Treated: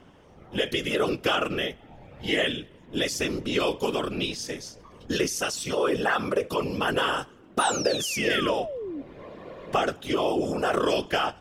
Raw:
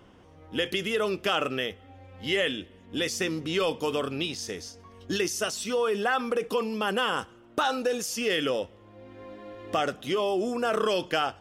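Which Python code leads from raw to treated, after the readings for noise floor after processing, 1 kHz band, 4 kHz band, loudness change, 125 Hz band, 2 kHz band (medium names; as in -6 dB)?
-52 dBFS, +2.0 dB, +1.5 dB, +1.5 dB, +4.0 dB, +2.0 dB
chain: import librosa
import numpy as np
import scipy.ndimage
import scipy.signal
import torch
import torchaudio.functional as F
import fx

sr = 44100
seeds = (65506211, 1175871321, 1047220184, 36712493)

y = fx.whisperise(x, sr, seeds[0])
y = fx.spec_paint(y, sr, seeds[1], shape='fall', start_s=7.59, length_s=1.43, low_hz=260.0, high_hz=10000.0, level_db=-35.0)
y = F.gain(torch.from_numpy(y), 1.5).numpy()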